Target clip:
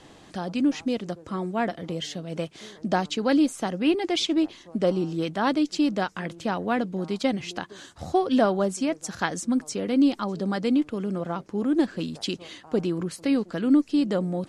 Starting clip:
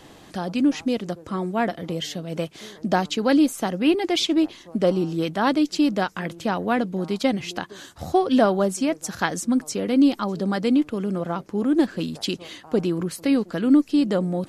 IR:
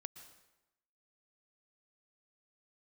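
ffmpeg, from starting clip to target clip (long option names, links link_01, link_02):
-af "lowpass=frequency=10000:width=0.5412,lowpass=frequency=10000:width=1.3066,volume=-3dB"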